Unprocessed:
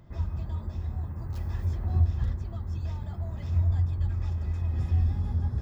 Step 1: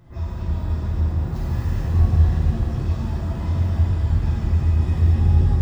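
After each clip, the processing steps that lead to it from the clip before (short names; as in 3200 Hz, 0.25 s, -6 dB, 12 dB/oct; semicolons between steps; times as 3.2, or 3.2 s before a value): shimmer reverb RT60 3.5 s, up +7 st, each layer -8 dB, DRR -9.5 dB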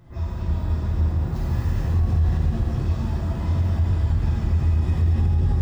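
limiter -13 dBFS, peak gain reduction 7 dB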